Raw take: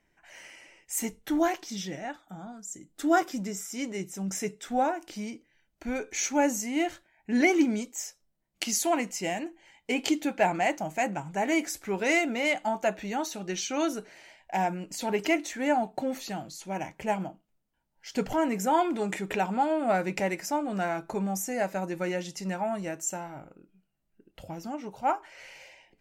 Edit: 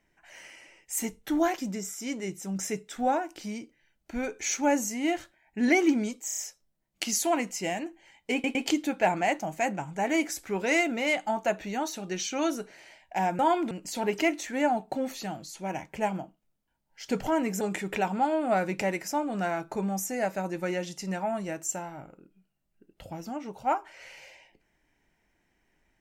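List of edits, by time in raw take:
1.58–3.30 s: delete
7.98 s: stutter 0.03 s, 5 plays
9.93 s: stutter 0.11 s, 3 plays
18.67–18.99 s: move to 14.77 s

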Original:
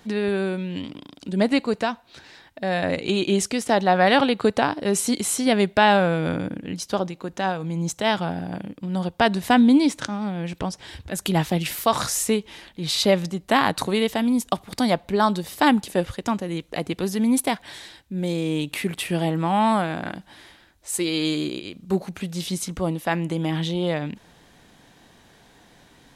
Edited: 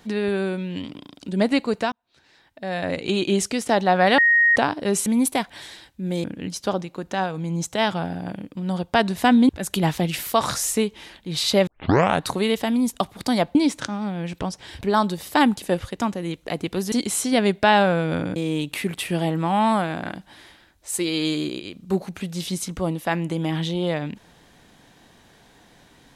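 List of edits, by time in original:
1.92–3.15 s: fade in
4.18–4.56 s: bleep 1.87 kHz -13 dBFS
5.06–6.50 s: swap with 17.18–18.36 s
9.75–11.01 s: move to 15.07 s
13.19 s: tape start 0.56 s

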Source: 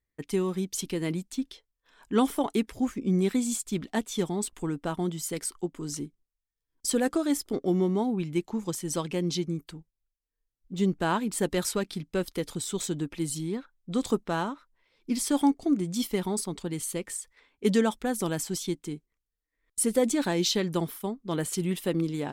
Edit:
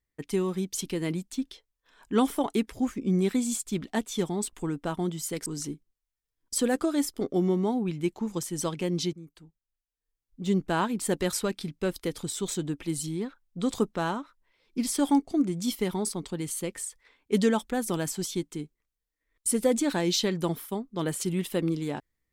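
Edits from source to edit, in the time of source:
5.46–5.78 s: delete
9.45–10.76 s: fade in, from -16 dB

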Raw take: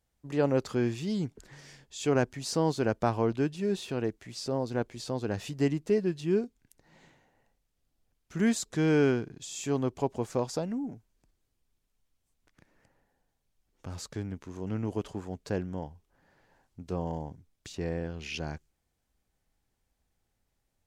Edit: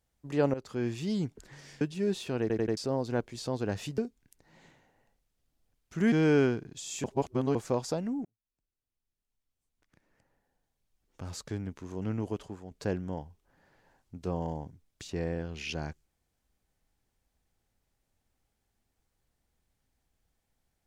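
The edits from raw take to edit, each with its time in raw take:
0.54–1.04 s: fade in, from -15 dB
1.81–3.43 s: delete
4.03 s: stutter in place 0.09 s, 4 plays
5.60–6.37 s: delete
8.51–8.77 s: delete
9.69–10.20 s: reverse
10.90–14.13 s: fade in
14.79–15.36 s: fade out, to -9 dB

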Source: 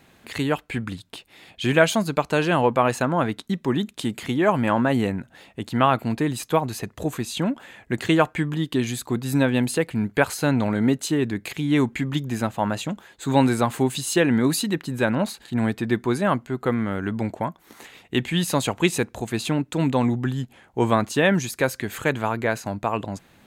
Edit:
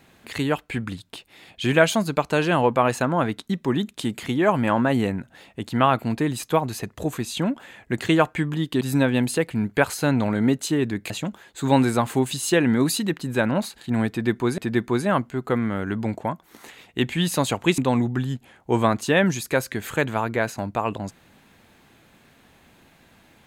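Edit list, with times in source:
8.81–9.21 s: delete
11.50–12.74 s: delete
15.74–16.22 s: loop, 2 plays
18.94–19.86 s: delete

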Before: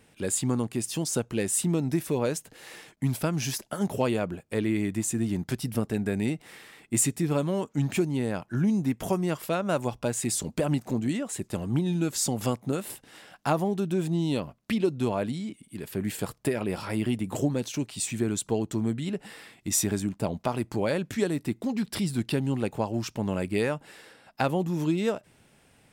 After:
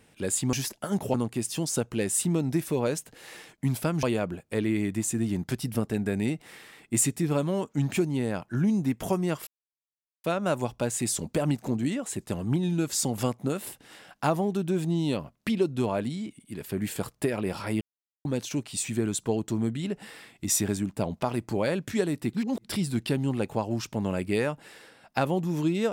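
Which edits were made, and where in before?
3.42–4.03 s: move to 0.53 s
9.47 s: insert silence 0.77 s
17.04–17.48 s: mute
21.56–21.87 s: reverse

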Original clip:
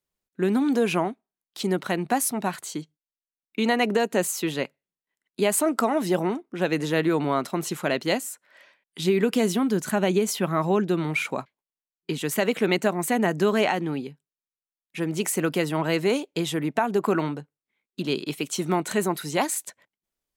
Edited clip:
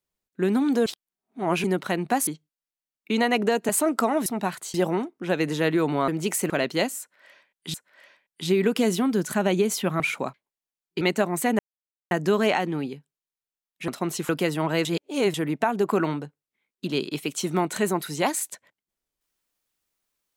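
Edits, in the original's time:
0.86–1.64 s: reverse
2.27–2.75 s: move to 6.06 s
4.17–5.49 s: delete
7.40–7.81 s: swap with 15.02–15.44 s
8.31–9.05 s: loop, 2 plays
10.57–11.12 s: delete
12.13–12.67 s: delete
13.25 s: insert silence 0.52 s
16.00–16.49 s: reverse

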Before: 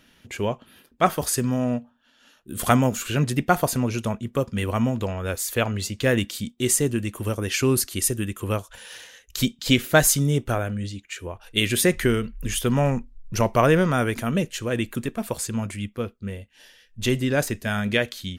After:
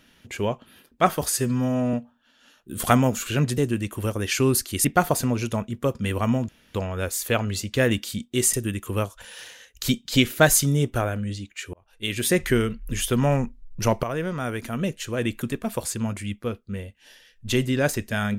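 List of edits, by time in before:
1.32–1.73 s: stretch 1.5×
5.01 s: insert room tone 0.26 s
6.80–8.07 s: move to 3.37 s
11.27–11.98 s: fade in
13.57–14.86 s: fade in, from -13 dB

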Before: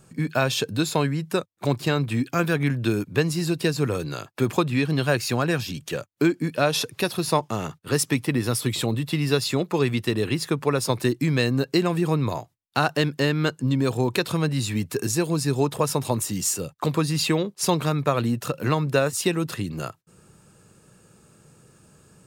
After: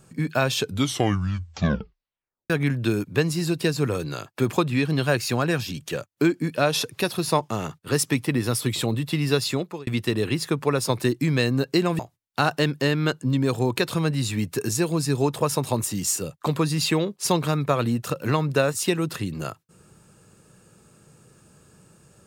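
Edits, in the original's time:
0.58 s: tape stop 1.92 s
9.49–9.87 s: fade out
11.99–12.37 s: delete

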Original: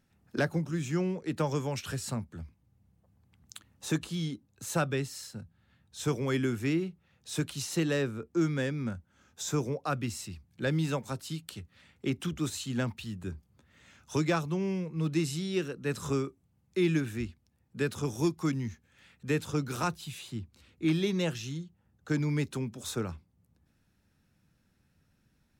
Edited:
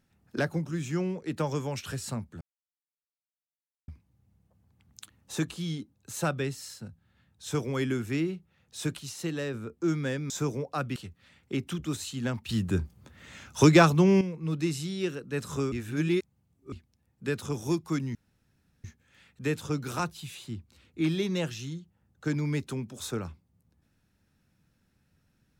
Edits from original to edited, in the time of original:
2.41 s: insert silence 1.47 s
7.52–8.07 s: gain -4 dB
8.83–9.42 s: delete
10.08–11.49 s: delete
13.02–14.74 s: gain +10.5 dB
16.25–17.25 s: reverse
18.68 s: insert room tone 0.69 s

